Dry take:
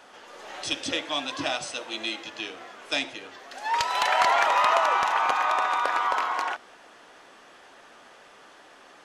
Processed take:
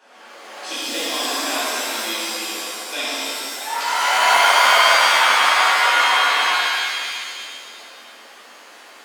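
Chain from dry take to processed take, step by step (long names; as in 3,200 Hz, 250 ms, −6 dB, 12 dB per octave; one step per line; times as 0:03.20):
elliptic high-pass filter 210 Hz, stop band 40 dB
reverb with rising layers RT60 2 s, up +7 semitones, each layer −2 dB, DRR −11 dB
level −6 dB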